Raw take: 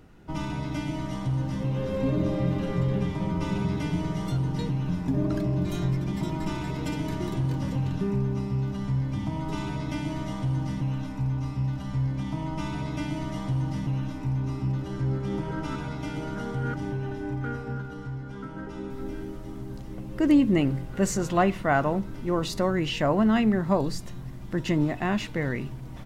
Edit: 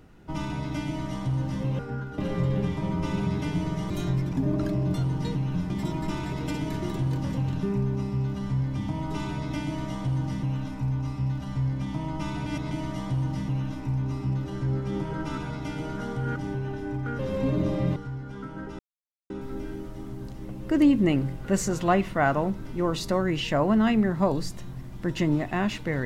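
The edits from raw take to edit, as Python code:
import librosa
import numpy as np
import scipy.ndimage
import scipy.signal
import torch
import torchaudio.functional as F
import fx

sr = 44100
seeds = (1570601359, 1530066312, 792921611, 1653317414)

y = fx.edit(x, sr, fx.swap(start_s=1.79, length_s=0.77, other_s=17.57, other_length_s=0.39),
    fx.swap(start_s=4.28, length_s=0.76, other_s=5.65, other_length_s=0.43),
    fx.reverse_span(start_s=12.84, length_s=0.25),
    fx.insert_silence(at_s=18.79, length_s=0.51), tone=tone)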